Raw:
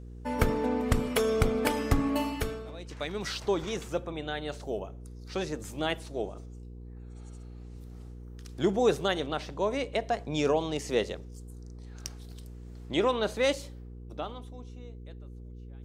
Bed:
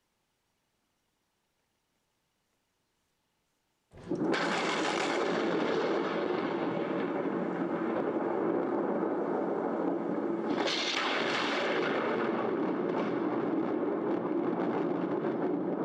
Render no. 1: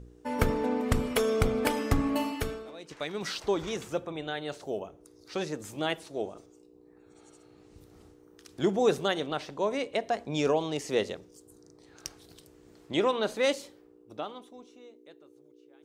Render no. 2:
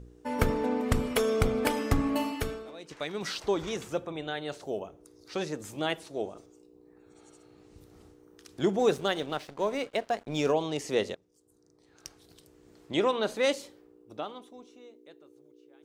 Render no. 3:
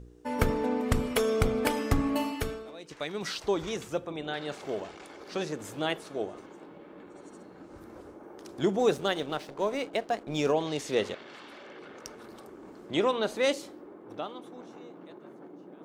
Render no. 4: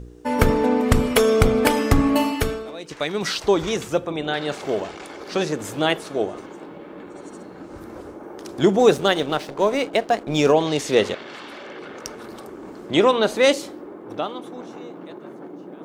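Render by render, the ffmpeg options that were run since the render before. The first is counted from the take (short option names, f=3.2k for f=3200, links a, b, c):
-af "bandreject=f=60:t=h:w=4,bandreject=f=120:t=h:w=4,bandreject=f=180:t=h:w=4,bandreject=f=240:t=h:w=4"
-filter_complex "[0:a]asettb=1/sr,asplit=3[a][b][c];[a]atrim=end=8.794[d];[b]atrim=start=8.79:end=10.52,asetpts=PTS-STARTPTS,afade=t=in:d=0.004:c=qsin,afade=t=out:st=1.726:d=0.004:c=qsin,aeval=exprs='sgn(val(0))*max(abs(val(0))-0.00376,0)':c=same[e];[c]atrim=start=10.516[f];[d][e]acrossfade=d=0.004:c1=hsin:c2=qsin[g];[g][f]acrossfade=d=0.004:c1=qsin:c2=hsin,asplit=2[h][i];[h]atrim=end=11.15,asetpts=PTS-STARTPTS,afade=t=out:st=11.146:d=0.004:c=hsin:silence=0.105925[j];[i]atrim=start=11.15,asetpts=PTS-STARTPTS,afade=t=in:d=1.85:silence=0.105925[k];[j][k]concat=n=2:v=0:a=1"
-filter_complex "[1:a]volume=-17dB[a];[0:a][a]amix=inputs=2:normalize=0"
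-af "volume=10dB,alimiter=limit=-2dB:level=0:latency=1"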